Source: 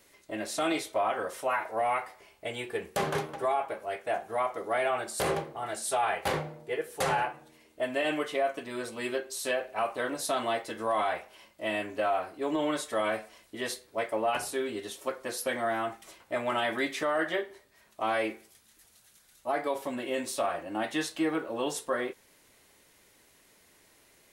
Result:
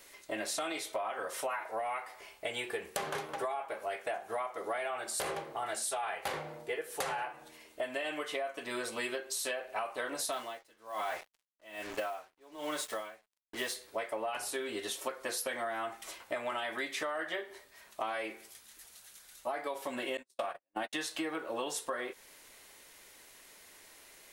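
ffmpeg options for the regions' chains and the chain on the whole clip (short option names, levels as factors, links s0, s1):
-filter_complex "[0:a]asettb=1/sr,asplit=3[s0][s1][s2];[s0]atrim=end=10.324[s3];[s1]atrim=start=10.32:end=13.75,asetpts=PTS-STARTPTS,afade=t=in:d=0.004:c=qsin,afade=t=out:st=3.426:d=0.004:c=qsin,acrusher=bits=6:mix=0:aa=0.5,aeval=exprs='val(0)*pow(10,-30*(0.5-0.5*cos(2*PI*1.2*n/s))/20)':c=same[s4];[s2]atrim=start=13.746[s5];[s3][s4]acrossfade=d=0.004:c1=hsin:c2=qsin[s6];[s6][s5]acrossfade=d=0.004:c1=qsin:c2=hsin,asettb=1/sr,asplit=3[s7][s8][s9];[s7]atrim=end=20.174[s10];[s8]atrim=start=20.17:end=20.93,asetpts=PTS-STARTPTS,afade=t=in:d=0.004:c=qsin,afade=t=out:st=0.756:d=0.004:c=qsin,agate=range=0.00224:threshold=0.0251:ratio=16:release=100:detection=peak,bandreject=f=1300:w=20[s11];[s9]atrim=start=20.926[s12];[s10][s11]acrossfade=d=0.004:c1=hsin:c2=qsin[s13];[s13][s12]acrossfade=d=0.004:c1=qsin:c2=hsin,equalizer=f=120:w=0.35:g=-10.5,acompressor=threshold=0.0112:ratio=10,volume=2"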